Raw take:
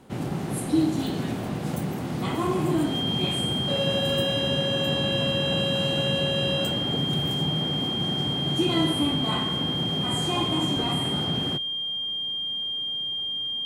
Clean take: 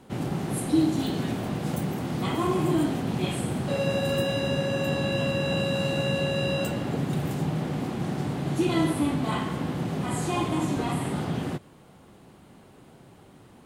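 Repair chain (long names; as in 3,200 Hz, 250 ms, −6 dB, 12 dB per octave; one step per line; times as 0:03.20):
notch filter 3,200 Hz, Q 30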